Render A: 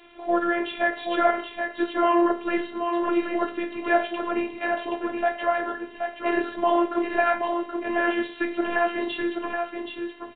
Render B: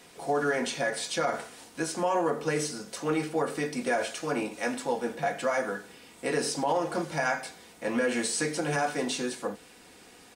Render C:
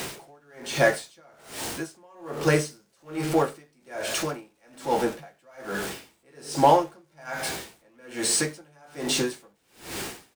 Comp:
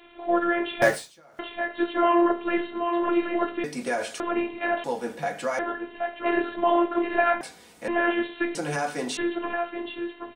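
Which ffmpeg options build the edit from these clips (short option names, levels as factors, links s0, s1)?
-filter_complex "[1:a]asplit=4[s0][s1][s2][s3];[0:a]asplit=6[s4][s5][s6][s7][s8][s9];[s4]atrim=end=0.822[s10];[2:a]atrim=start=0.818:end=1.392[s11];[s5]atrim=start=1.388:end=3.642[s12];[s0]atrim=start=3.638:end=4.202[s13];[s6]atrim=start=4.198:end=4.842[s14];[s1]atrim=start=4.838:end=5.592[s15];[s7]atrim=start=5.588:end=7.412[s16];[s2]atrim=start=7.408:end=7.882[s17];[s8]atrim=start=7.878:end=8.552[s18];[s3]atrim=start=8.548:end=9.172[s19];[s9]atrim=start=9.168[s20];[s10][s11]acrossfade=d=0.004:c1=hsin:c2=hsin[s21];[s21][s12]acrossfade=d=0.004:c1=hsin:c2=hsin[s22];[s22][s13]acrossfade=d=0.004:c1=hsin:c2=hsin[s23];[s23][s14]acrossfade=d=0.004:c1=hsin:c2=hsin[s24];[s24][s15]acrossfade=d=0.004:c1=hsin:c2=hsin[s25];[s25][s16]acrossfade=d=0.004:c1=hsin:c2=hsin[s26];[s26][s17]acrossfade=d=0.004:c1=hsin:c2=hsin[s27];[s27][s18]acrossfade=d=0.004:c1=hsin:c2=hsin[s28];[s28][s19]acrossfade=d=0.004:c1=hsin:c2=hsin[s29];[s29][s20]acrossfade=d=0.004:c1=hsin:c2=hsin"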